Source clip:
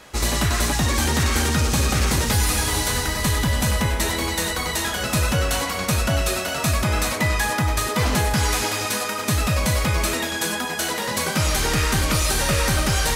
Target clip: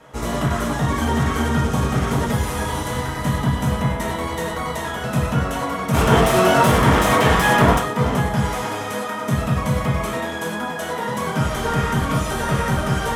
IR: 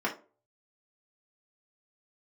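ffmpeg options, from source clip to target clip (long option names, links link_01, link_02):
-filter_complex "[0:a]asplit=3[link_01][link_02][link_03];[link_01]afade=type=out:start_time=5.93:duration=0.02[link_04];[link_02]aeval=exprs='0.282*sin(PI/2*3.16*val(0)/0.282)':channel_layout=same,afade=type=in:start_time=5.93:duration=0.02,afade=type=out:start_time=7.78:duration=0.02[link_05];[link_03]afade=type=in:start_time=7.78:duration=0.02[link_06];[link_04][link_05][link_06]amix=inputs=3:normalize=0[link_07];[1:a]atrim=start_sample=2205,asetrate=27342,aresample=44100[link_08];[link_07][link_08]afir=irnorm=-1:irlink=0,volume=-10.5dB"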